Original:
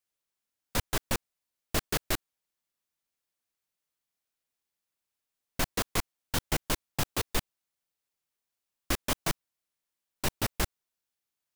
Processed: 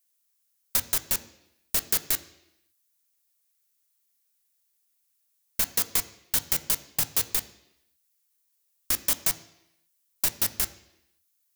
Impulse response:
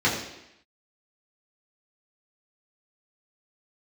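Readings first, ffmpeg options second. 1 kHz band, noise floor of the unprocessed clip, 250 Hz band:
−4.5 dB, below −85 dBFS, −7.0 dB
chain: -filter_complex "[0:a]acompressor=threshold=-30dB:ratio=4,crystalizer=i=6:c=0,asplit=2[link_01][link_02];[1:a]atrim=start_sample=2205[link_03];[link_02][link_03]afir=irnorm=-1:irlink=0,volume=-24.5dB[link_04];[link_01][link_04]amix=inputs=2:normalize=0,volume=-4dB"

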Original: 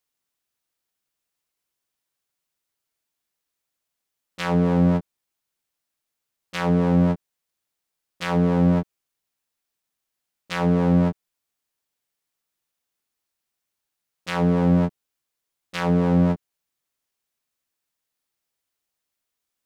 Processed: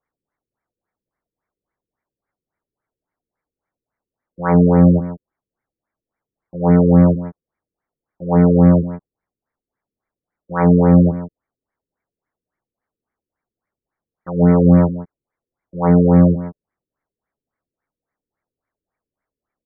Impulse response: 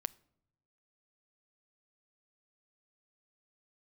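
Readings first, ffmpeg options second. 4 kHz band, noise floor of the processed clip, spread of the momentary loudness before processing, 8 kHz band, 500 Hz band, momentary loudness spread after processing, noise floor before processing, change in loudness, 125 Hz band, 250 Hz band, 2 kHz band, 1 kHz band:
below −40 dB, below −85 dBFS, 13 LU, can't be measured, +8.0 dB, 17 LU, −83 dBFS, +8.0 dB, +8.0 dB, +7.5 dB, −1.5 dB, +5.0 dB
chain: -af "aecho=1:1:162:0.188,afftfilt=real='re*lt(b*sr/1024,500*pow(2400/500,0.5+0.5*sin(2*PI*3.6*pts/sr)))':imag='im*lt(b*sr/1024,500*pow(2400/500,0.5+0.5*sin(2*PI*3.6*pts/sr)))':win_size=1024:overlap=0.75,volume=8dB"

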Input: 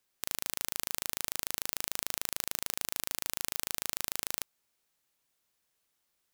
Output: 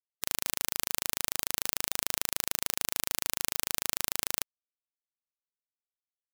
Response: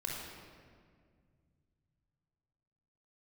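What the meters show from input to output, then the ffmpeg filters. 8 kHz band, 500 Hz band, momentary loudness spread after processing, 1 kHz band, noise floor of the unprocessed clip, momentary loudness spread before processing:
+3.5 dB, +3.5 dB, 1 LU, +3.5 dB, −79 dBFS, 1 LU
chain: -af "afftfilt=real='re*gte(hypot(re,im),0.00224)':imag='im*gte(hypot(re,im),0.00224)':win_size=1024:overlap=0.75,volume=3.5dB"

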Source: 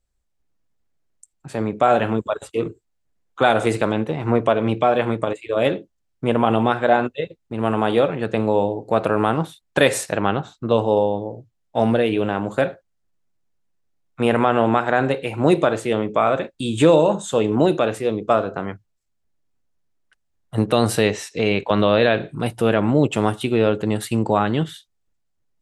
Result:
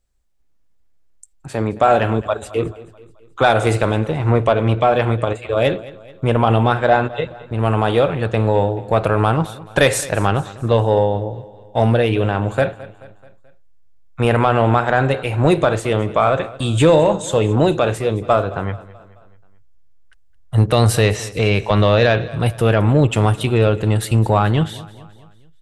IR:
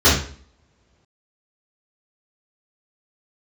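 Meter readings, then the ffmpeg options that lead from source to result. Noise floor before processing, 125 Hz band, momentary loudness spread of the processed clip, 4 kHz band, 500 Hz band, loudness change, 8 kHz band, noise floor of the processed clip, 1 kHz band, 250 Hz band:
−71 dBFS, +9.5 dB, 9 LU, +3.0 dB, +2.0 dB, +3.0 dB, +4.0 dB, −51 dBFS, +2.5 dB, +0.5 dB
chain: -af "asubboost=boost=7.5:cutoff=82,acontrast=28,aecho=1:1:216|432|648|864:0.112|0.0561|0.0281|0.014,volume=-1dB"

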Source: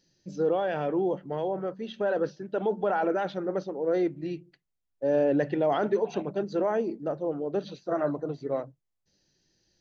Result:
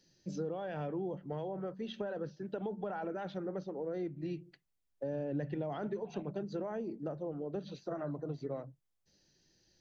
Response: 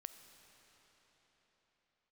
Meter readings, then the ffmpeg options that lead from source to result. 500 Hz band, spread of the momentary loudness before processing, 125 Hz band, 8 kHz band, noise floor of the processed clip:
−12.0 dB, 8 LU, −3.0 dB, can't be measured, −81 dBFS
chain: -filter_complex "[0:a]acrossover=split=170[link_01][link_02];[link_02]acompressor=threshold=-38dB:ratio=6[link_03];[link_01][link_03]amix=inputs=2:normalize=0"

